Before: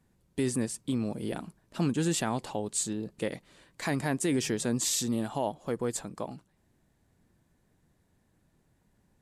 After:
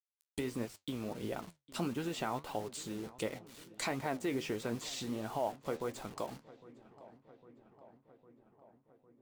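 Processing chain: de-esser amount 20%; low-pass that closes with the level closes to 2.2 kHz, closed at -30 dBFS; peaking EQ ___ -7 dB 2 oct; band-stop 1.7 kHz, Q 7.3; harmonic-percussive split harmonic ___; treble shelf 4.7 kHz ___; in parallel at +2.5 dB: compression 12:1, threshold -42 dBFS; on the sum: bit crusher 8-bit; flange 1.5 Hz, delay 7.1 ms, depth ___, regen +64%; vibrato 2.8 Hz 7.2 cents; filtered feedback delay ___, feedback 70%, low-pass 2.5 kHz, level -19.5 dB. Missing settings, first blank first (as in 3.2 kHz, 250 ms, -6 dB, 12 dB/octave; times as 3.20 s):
180 Hz, -4 dB, +7 dB, 8.5 ms, 805 ms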